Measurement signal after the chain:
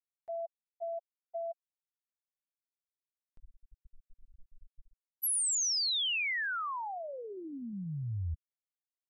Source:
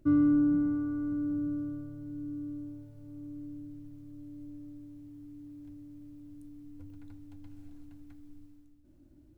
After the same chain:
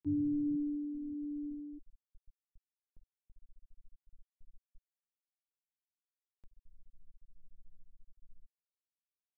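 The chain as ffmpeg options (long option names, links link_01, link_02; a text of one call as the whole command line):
ffmpeg -i in.wav -filter_complex "[0:a]equalizer=frequency=380:width=0.39:gain=-11.5,asplit=2[link_01][link_02];[link_02]adelay=390,highpass=300,lowpass=3400,asoftclip=type=hard:threshold=-34.5dB,volume=-12dB[link_03];[link_01][link_03]amix=inputs=2:normalize=0,afftfilt=real='re*gte(hypot(re,im),0.0562)':imag='im*gte(hypot(re,im),0.0562)':win_size=1024:overlap=0.75,acompressor=mode=upward:threshold=-51dB:ratio=2.5,volume=2dB" out.wav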